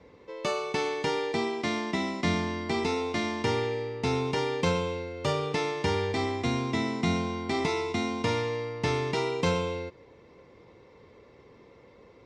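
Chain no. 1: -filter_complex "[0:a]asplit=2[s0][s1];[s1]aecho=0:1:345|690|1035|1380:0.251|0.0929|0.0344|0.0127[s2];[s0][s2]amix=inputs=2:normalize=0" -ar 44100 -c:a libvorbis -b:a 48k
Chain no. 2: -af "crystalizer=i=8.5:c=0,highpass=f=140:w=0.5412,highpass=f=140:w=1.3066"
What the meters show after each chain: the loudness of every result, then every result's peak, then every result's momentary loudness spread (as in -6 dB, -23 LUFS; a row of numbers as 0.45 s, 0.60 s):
-29.0 LUFS, -22.5 LUFS; -13.0 dBFS, -6.5 dBFS; 5 LU, 4 LU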